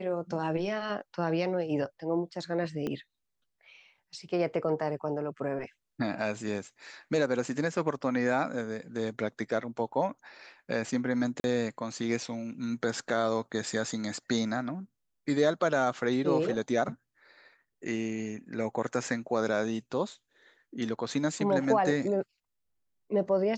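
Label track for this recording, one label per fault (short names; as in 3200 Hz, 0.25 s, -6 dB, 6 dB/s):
2.870000	2.870000	pop -21 dBFS
11.400000	11.440000	gap 41 ms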